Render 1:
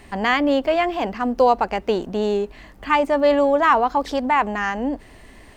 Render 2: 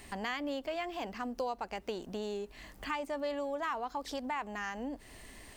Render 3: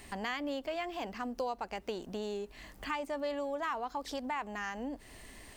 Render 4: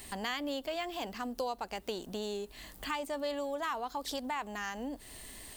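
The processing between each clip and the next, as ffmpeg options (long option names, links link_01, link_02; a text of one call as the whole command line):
ffmpeg -i in.wav -af "highshelf=frequency=3700:gain=11.5,acompressor=threshold=-31dB:ratio=2.5,volume=-8dB" out.wav
ffmpeg -i in.wav -af anull out.wav
ffmpeg -i in.wav -af "aexciter=amount=2.5:drive=2.4:freq=3200" out.wav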